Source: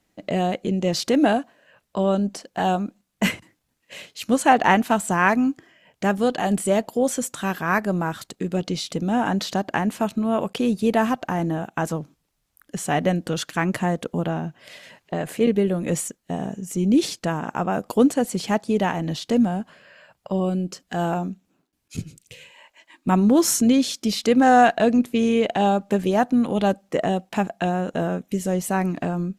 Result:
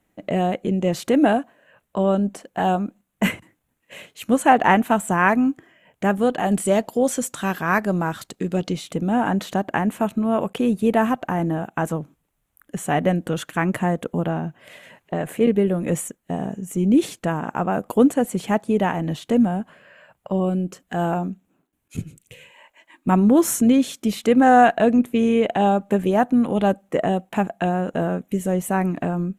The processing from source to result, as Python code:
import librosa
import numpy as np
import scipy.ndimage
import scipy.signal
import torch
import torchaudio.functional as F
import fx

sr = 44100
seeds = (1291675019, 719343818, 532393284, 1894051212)

y = fx.peak_eq(x, sr, hz=4900.0, db=fx.steps((0.0, -14.0), (6.52, -3.0), (8.73, -14.0)), octaves=0.8)
y = F.gain(torch.from_numpy(y), 1.5).numpy()